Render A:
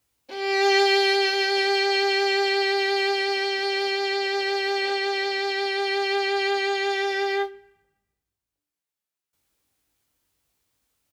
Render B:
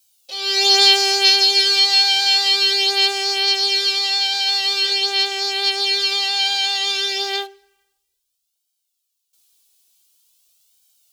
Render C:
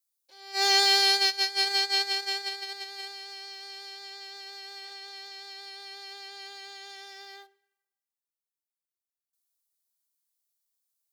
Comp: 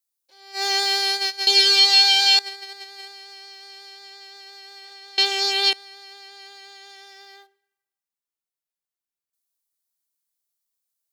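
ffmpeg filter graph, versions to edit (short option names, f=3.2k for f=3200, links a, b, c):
-filter_complex "[1:a]asplit=2[a][b];[2:a]asplit=3[c][d][e];[c]atrim=end=1.472[f];[a]atrim=start=1.468:end=2.392[g];[d]atrim=start=2.388:end=5.182[h];[b]atrim=start=5.178:end=5.732[i];[e]atrim=start=5.728[j];[f][g]acrossfade=d=0.004:c1=hsin:c2=hsin[k];[k][h]acrossfade=d=0.004:c1=hsin:c2=hsin[l];[l][i]acrossfade=d=0.004:c1=hsin:c2=hsin[m];[m][j]acrossfade=d=0.004:c1=hsin:c2=hsin"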